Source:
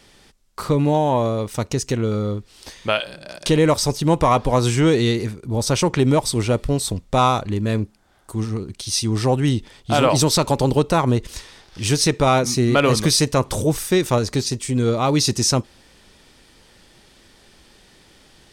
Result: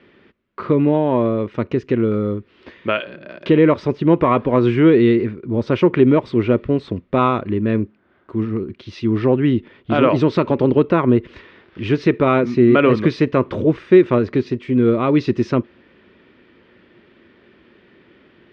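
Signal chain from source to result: cabinet simulation 110–2600 Hz, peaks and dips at 140 Hz -3 dB, 240 Hz +4 dB, 360 Hz +7 dB, 800 Hz -10 dB; trim +2 dB

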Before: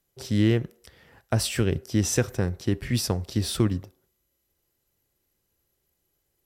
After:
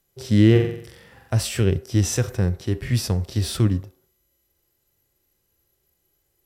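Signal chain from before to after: 0.51–1.34 s: flutter echo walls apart 7.7 m, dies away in 0.62 s; harmonic-percussive split percussive -10 dB; trim +7 dB

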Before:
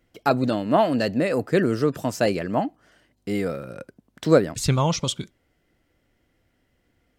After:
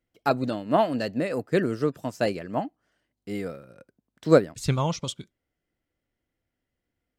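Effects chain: upward expansion 1.5:1, over -41 dBFS

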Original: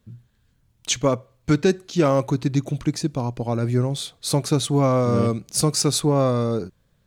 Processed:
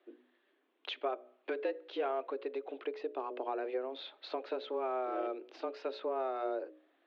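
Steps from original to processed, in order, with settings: hum notches 60/120/180/240/300/360/420/480 Hz; compression 6:1, threshold -32 dBFS, peak gain reduction 17 dB; mistuned SSB +130 Hz 220–3200 Hz

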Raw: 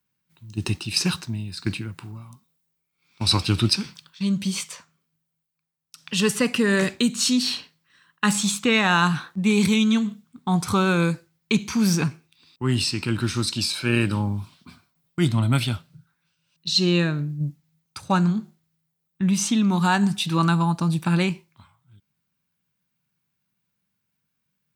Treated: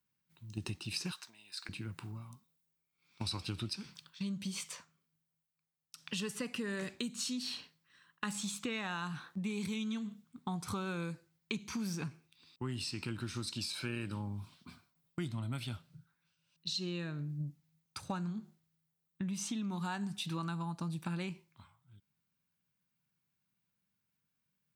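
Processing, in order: compression 6:1, threshold -29 dBFS, peak gain reduction 14 dB; 1.12–1.69 s: high-pass 900 Hz 12 dB/octave; trim -7 dB

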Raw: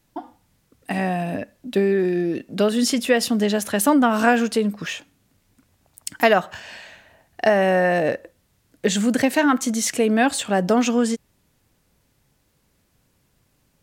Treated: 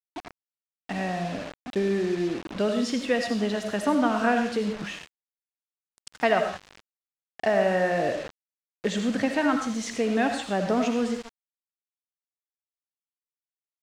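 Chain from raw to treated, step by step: on a send at -5 dB: reverberation, pre-delay 40 ms; on the sum: bit crusher 5-bit; distance through air 96 m; trim -6.5 dB

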